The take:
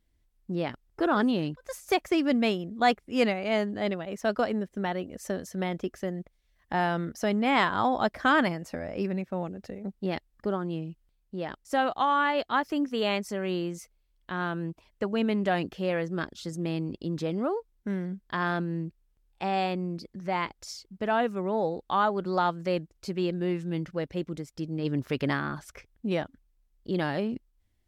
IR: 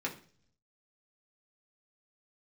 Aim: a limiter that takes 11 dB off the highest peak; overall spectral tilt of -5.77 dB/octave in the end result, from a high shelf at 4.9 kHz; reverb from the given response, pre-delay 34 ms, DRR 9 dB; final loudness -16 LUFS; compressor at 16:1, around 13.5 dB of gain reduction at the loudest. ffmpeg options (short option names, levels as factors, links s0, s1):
-filter_complex "[0:a]highshelf=f=4900:g=-5,acompressor=threshold=0.0282:ratio=16,alimiter=level_in=2.11:limit=0.0631:level=0:latency=1,volume=0.473,asplit=2[s0][s1];[1:a]atrim=start_sample=2205,adelay=34[s2];[s1][s2]afir=irnorm=-1:irlink=0,volume=0.224[s3];[s0][s3]amix=inputs=2:normalize=0,volume=15.8"